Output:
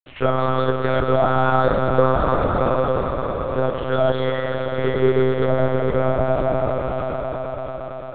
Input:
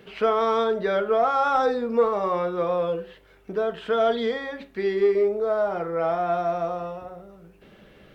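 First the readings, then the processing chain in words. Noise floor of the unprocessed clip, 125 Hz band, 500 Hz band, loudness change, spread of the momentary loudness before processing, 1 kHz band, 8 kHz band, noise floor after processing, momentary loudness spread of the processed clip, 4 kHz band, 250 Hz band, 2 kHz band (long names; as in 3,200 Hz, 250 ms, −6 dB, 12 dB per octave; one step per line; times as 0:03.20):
−54 dBFS, +18.5 dB, +3.5 dB, +3.5 dB, 11 LU, +3.0 dB, can't be measured, −31 dBFS, 8 LU, +3.0 dB, +7.0 dB, +5.5 dB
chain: centre clipping without the shift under −40 dBFS
on a send: echo that builds up and dies away 113 ms, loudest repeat 5, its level −11 dB
on the sum: one-pitch LPC vocoder at 8 kHz 130 Hz
level +2.5 dB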